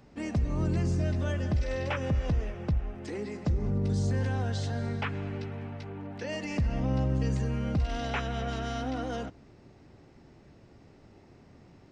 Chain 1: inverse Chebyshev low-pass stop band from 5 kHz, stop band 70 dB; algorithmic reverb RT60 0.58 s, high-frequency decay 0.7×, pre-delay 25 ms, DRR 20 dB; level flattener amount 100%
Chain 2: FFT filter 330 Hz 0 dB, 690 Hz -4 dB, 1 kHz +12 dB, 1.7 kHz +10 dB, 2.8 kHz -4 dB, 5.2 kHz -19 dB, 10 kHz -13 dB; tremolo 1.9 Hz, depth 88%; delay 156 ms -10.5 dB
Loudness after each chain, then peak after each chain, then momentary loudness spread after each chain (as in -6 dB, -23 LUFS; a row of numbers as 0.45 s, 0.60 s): -25.0 LUFS, -34.5 LUFS; -12.0 dBFS, -18.5 dBFS; 1 LU, 8 LU